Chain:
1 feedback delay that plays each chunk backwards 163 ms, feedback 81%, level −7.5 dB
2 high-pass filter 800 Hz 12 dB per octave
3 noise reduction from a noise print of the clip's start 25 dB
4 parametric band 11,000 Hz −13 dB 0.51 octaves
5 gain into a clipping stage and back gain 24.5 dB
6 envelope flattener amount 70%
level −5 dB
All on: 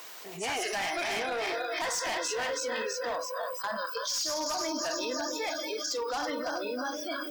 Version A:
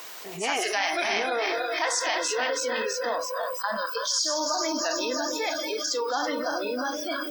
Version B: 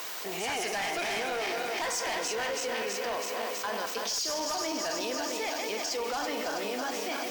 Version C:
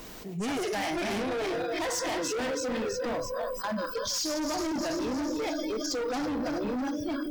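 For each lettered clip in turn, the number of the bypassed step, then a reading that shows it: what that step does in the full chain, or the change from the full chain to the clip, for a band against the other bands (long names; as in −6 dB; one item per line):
5, distortion level −9 dB
3, change in momentary loudness spread −1 LU
2, 250 Hz band +11.0 dB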